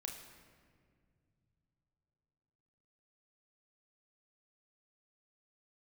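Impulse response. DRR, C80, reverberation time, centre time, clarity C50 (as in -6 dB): 1.5 dB, 7.5 dB, 2.1 s, 43 ms, 6.0 dB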